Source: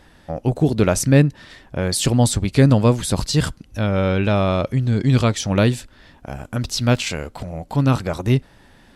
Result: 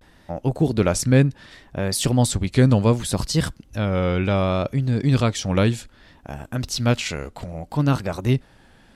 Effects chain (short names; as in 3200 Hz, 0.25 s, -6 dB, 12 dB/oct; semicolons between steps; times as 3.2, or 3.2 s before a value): vibrato 0.66 Hz 89 cents; gain -2.5 dB